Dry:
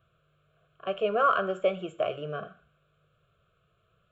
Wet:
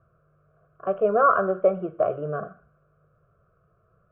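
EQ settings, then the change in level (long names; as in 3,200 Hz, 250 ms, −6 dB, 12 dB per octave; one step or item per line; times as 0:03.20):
low-pass filter 1,400 Hz 24 dB per octave
+6.0 dB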